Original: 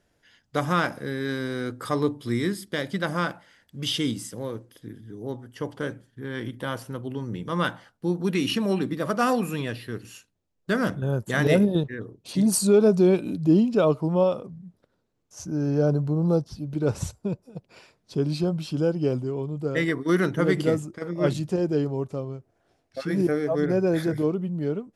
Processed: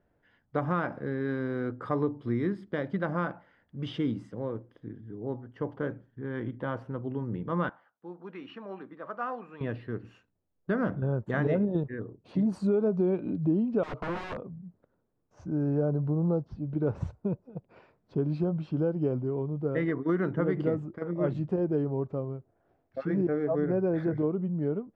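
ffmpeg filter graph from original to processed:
ffmpeg -i in.wav -filter_complex "[0:a]asettb=1/sr,asplit=3[link_01][link_02][link_03];[link_01]atrim=end=7.694[link_04];[link_02]atrim=start=7.69:end=9.61,asetpts=PTS-STARTPTS,afade=type=in:duration=0.004:curve=qsin,afade=type=out:start_time=1.916:duration=0.004:curve=qsin,bandpass=frequency=1700:width_type=q:width=1.2,equalizer=frequency=1900:width=1.2:gain=-7[link_05];[link_03]atrim=start=9.606[link_06];[link_04][link_05]acrossfade=duration=0.004:curve1=hsin:curve2=qsin[link_07];[link_07][link_06]acrossfade=duration=0.004:curve1=qsin:curve2=hsin,asettb=1/sr,asplit=3[link_08][link_09][link_10];[link_08]atrim=end=13.834[link_11];[link_09]atrim=start=13.83:end=14.46,asetpts=PTS-STARTPTS,afade=type=in:duration=0.004:curve=qsin,afade=type=out:start_time=0.626:duration=0.004:curve=qsin,agate=range=-33dB:threshold=-37dB:ratio=3:release=100:detection=peak,aeval=exprs='(mod(17.8*val(0)+1,2)-1)/17.8':channel_layout=same[link_12];[link_10]atrim=start=14.456[link_13];[link_11][link_12]acrossfade=duration=0.004:curve1=hsin:curve2=qsin[link_14];[link_14][link_13]acrossfade=duration=0.004:curve1=qsin:curve2=hsin,lowpass=1400,acompressor=threshold=-22dB:ratio=4,volume=-1.5dB" out.wav

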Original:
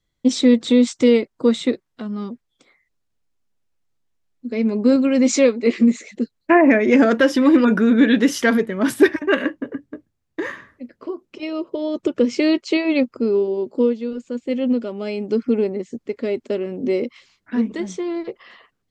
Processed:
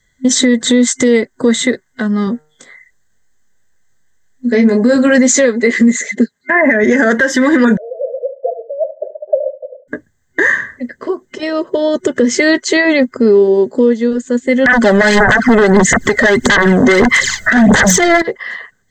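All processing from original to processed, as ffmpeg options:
ffmpeg -i in.wav -filter_complex "[0:a]asettb=1/sr,asplit=3[link_01][link_02][link_03];[link_01]atrim=end=2.254[link_04];[link_02]atrim=start=2.25:end=5.18,asetpts=PTS-STARTPTS,afade=type=in:duration=0.004:curve=qsin,afade=type=out:start_time=2.926:duration=0.004:curve=qsin,asplit=2[link_05][link_06];[link_06]adelay=21,volume=-6dB[link_07];[link_05][link_07]amix=inputs=2:normalize=0,atrim=end_sample=129213,bandreject=frequency=152.6:width_type=h:width=4,bandreject=frequency=305.2:width_type=h:width=4,bandreject=frequency=457.8:width_type=h:width=4,bandreject=frequency=610.4:width_type=h:width=4,bandreject=frequency=763:width_type=h:width=4,bandreject=frequency=915.6:width_type=h:width=4,bandreject=frequency=1068.2:width_type=h:width=4,bandreject=frequency=1220.8:width_type=h:width=4,bandreject=frequency=1373.4:width_type=h:width=4,bandreject=frequency=1526:width_type=h:width=4,bandreject=frequency=1678.6:width_type=h:width=4[link_08];[link_03]atrim=start=5.176[link_09];[link_04][link_08]acrossfade=duration=0.004:curve1=hsin:curve2=qsin[link_10];[link_10][link_09]acrossfade=duration=0.004:curve1=qsin:curve2=hsin,asettb=1/sr,asplit=3[link_11][link_12][link_13];[link_11]atrim=end=6.064[link_14];[link_12]atrim=start=6.06:end=6.84,asetpts=PTS-STARTPTS,afade=type=in:duration=0.004:curve=qsin,afade=type=out:start_time=0.776:duration=0.004:curve=qsin,highpass=100,highshelf=frequency=6100:gain=-6.5,aecho=1:1:4.9:0.42,atrim=end_sample=34398[link_15];[link_13]atrim=start=6.836[link_16];[link_14][link_15]acrossfade=duration=0.004:curve1=hsin:curve2=qsin[link_17];[link_17][link_16]acrossfade=duration=0.004:curve1=qsin:curve2=hsin,asettb=1/sr,asplit=3[link_18][link_19][link_20];[link_18]atrim=end=7.774[link_21];[link_19]atrim=start=7.77:end=9.88,asetpts=PTS-STARTPTS,afade=type=in:duration=0.004:curve=qsin,afade=type=out:start_time=2.106:duration=0.004:curve=qsin,asuperpass=centerf=580:order=8:qfactor=3.7,aecho=1:1:72|144:0.224|0.0403,atrim=end_sample=93051[link_22];[link_20]atrim=start=9.876[link_23];[link_21][link_22]acrossfade=duration=0.004:curve1=hsin:curve2=qsin[link_24];[link_24][link_23]acrossfade=duration=0.004:curve1=qsin:curve2=hsin,asettb=1/sr,asplit=3[link_25][link_26][link_27];[link_25]atrim=end=14.664[link_28];[link_26]atrim=start=14.66:end=18.22,asetpts=PTS-STARTPTS,afade=type=in:duration=0.004:curve=qsin,afade=type=out:start_time=3.556:duration=0.004:curve=qsin,acompressor=threshold=-37dB:ratio=3:attack=3.2:release=140:knee=1:detection=peak,aphaser=in_gain=1:out_gain=1:delay=1.6:decay=0.71:speed=1.6:type=sinusoidal,aeval=exprs='0.188*sin(PI/2*8.91*val(0)/0.188)':channel_layout=same[link_29];[link_27]atrim=start=18.216[link_30];[link_28][link_29]acrossfade=duration=0.004:curve1=hsin:curve2=qsin[link_31];[link_31][link_30]acrossfade=duration=0.004:curve1=qsin:curve2=hsin,superequalizer=6b=0.501:11b=3.55:12b=0.398:15b=2.82:16b=0.447,acompressor=threshold=-16dB:ratio=5,alimiter=level_in=13.5dB:limit=-1dB:release=50:level=0:latency=1,volume=-1dB" out.wav

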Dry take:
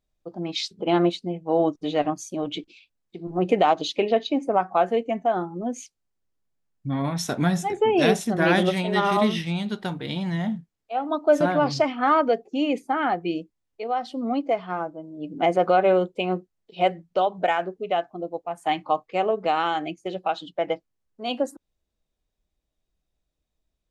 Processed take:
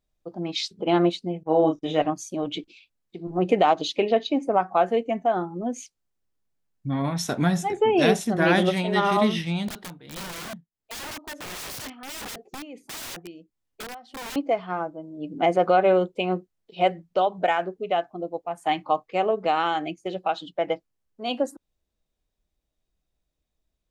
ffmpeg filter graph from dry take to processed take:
ffmpeg -i in.wav -filter_complex "[0:a]asettb=1/sr,asplit=3[link_01][link_02][link_03];[link_01]atrim=end=1.434[link_04];[link_02]atrim=start=1.43:end=2.02,asetpts=PTS-STARTPTS,afade=type=in:duration=0.004:curve=qsin,afade=type=out:start_time=0.586:duration=0.004:curve=qsin,agate=range=-33dB:threshold=-39dB:ratio=3:release=100:detection=peak,asuperstop=centerf=4400:order=4:qfactor=5,asplit=2[link_05][link_06];[link_06]adelay=32,volume=-4.5dB[link_07];[link_05][link_07]amix=inputs=2:normalize=0,atrim=end_sample=26019[link_08];[link_03]atrim=start=2.016[link_09];[link_04][link_08]acrossfade=duration=0.004:curve1=hsin:curve2=qsin[link_10];[link_10][link_09]acrossfade=duration=0.004:curve1=qsin:curve2=hsin,asettb=1/sr,asplit=3[link_11][link_12][link_13];[link_11]atrim=end=9.684[link_14];[link_12]atrim=start=9.68:end=14.36,asetpts=PTS-STARTPTS,afade=type=in:duration=0.004:curve=qsin,afade=type=out:start_time=4.676:duration=0.004:curve=qsin,acompressor=threshold=-28dB:ratio=1.5:attack=3.2:release=140:knee=1:detection=peak,tremolo=f=1.5:d=0.82,aeval=exprs='(mod(37.6*val(0)+1,2)-1)/37.6':channel_layout=same[link_15];[link_13]atrim=start=14.356[link_16];[link_14][link_15]acrossfade=duration=0.004:curve1=hsin:curve2=qsin[link_17];[link_17][link_16]acrossfade=duration=0.004:curve1=qsin:curve2=hsin" out.wav

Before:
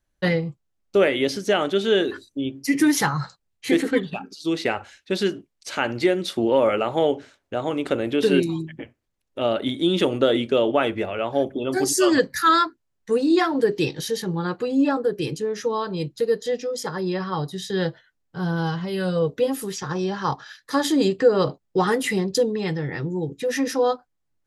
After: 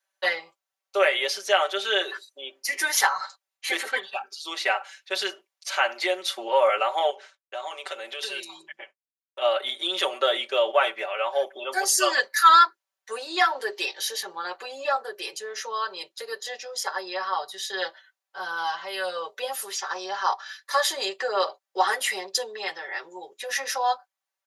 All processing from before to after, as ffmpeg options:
ffmpeg -i in.wav -filter_complex "[0:a]asettb=1/sr,asplit=3[link_01][link_02][link_03];[link_01]atrim=end=7.104[link_04];[link_02]atrim=start=7.1:end=9.42,asetpts=PTS-STARTPTS,afade=type=in:duration=0.004:curve=qsin,afade=type=out:start_time=2.316:duration=0.004:curve=qsin,lowpass=9800,agate=range=-33dB:threshold=-48dB:ratio=3:release=100:detection=peak,acrossover=split=160|3000[link_05][link_06][link_07];[link_06]acompressor=threshold=-29dB:ratio=4:attack=3.2:release=140:knee=2.83:detection=peak[link_08];[link_05][link_08][link_07]amix=inputs=3:normalize=0[link_09];[link_03]atrim=start=9.416[link_10];[link_04][link_09]acrossfade=duration=0.004:curve1=hsin:curve2=qsin[link_11];[link_11][link_10]acrossfade=duration=0.004:curve1=qsin:curve2=hsin,highpass=frequency=640:width=0.5412,highpass=frequency=640:width=1.3066,bandreject=frequency=7900:width=13,aecho=1:1:5.2:0.93" out.wav

